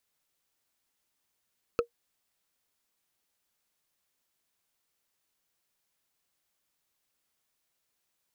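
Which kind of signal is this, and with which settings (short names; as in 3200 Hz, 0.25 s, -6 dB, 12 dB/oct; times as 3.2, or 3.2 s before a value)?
wood hit, lowest mode 472 Hz, decay 0.10 s, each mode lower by 5 dB, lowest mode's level -17.5 dB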